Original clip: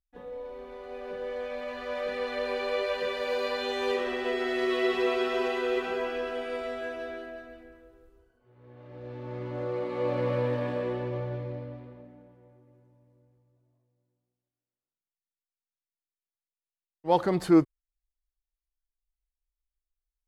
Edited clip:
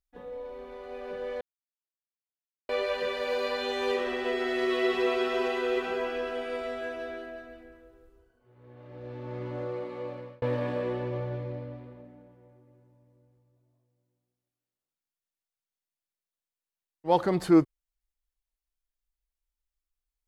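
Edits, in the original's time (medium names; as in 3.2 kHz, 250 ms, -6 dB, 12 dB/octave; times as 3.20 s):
1.41–2.69 s: mute
9.48–10.42 s: fade out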